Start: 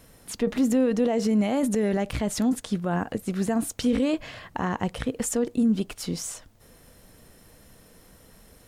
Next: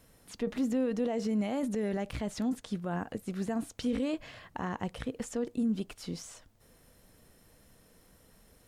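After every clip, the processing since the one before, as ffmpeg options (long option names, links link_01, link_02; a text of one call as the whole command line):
ffmpeg -i in.wav -filter_complex "[0:a]acrossover=split=6100[link_01][link_02];[link_02]acompressor=threshold=-44dB:ratio=4:attack=1:release=60[link_03];[link_01][link_03]amix=inputs=2:normalize=0,volume=-8dB" out.wav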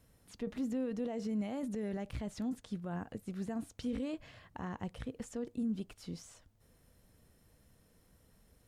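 ffmpeg -i in.wav -af "equalizer=frequency=76:width=0.49:gain=7,volume=-8dB" out.wav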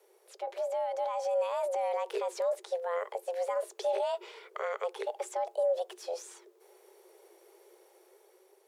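ffmpeg -i in.wav -af "dynaudnorm=framelen=420:gausssize=5:maxgain=5dB,afreqshift=340,volume=1.5dB" out.wav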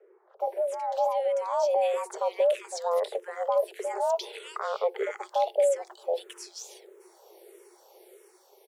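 ffmpeg -i in.wav -filter_complex "[0:a]acrossover=split=1700[link_01][link_02];[link_02]adelay=400[link_03];[link_01][link_03]amix=inputs=2:normalize=0,asplit=2[link_04][link_05];[link_05]afreqshift=-1.6[link_06];[link_04][link_06]amix=inputs=2:normalize=1,volume=8.5dB" out.wav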